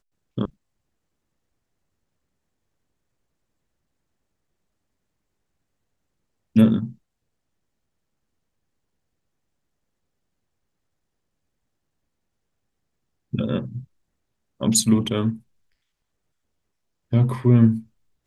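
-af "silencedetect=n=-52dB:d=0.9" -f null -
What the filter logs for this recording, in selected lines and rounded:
silence_start: 0.50
silence_end: 6.56 | silence_duration: 6.06
silence_start: 6.96
silence_end: 13.33 | silence_duration: 6.37
silence_start: 15.42
silence_end: 17.11 | silence_duration: 1.70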